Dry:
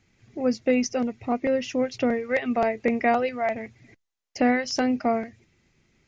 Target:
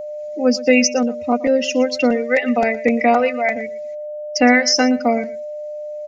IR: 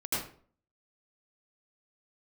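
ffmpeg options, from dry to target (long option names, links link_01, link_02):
-filter_complex "[0:a]afftdn=noise_reduction=14:noise_floor=-33,highshelf=frequency=2500:gain=7.5,aecho=1:1:4:0.94,acrossover=split=260|2300[link_01][link_02][link_03];[link_03]alimiter=limit=-20dB:level=0:latency=1:release=293[link_04];[link_01][link_02][link_04]amix=inputs=3:normalize=0,crystalizer=i=4:c=0,aeval=exprs='val(0)+0.0398*sin(2*PI*600*n/s)':channel_layout=same,asplit=2[link_05][link_06];[link_06]aecho=0:1:117:0.126[link_07];[link_05][link_07]amix=inputs=2:normalize=0,volume=1.5dB"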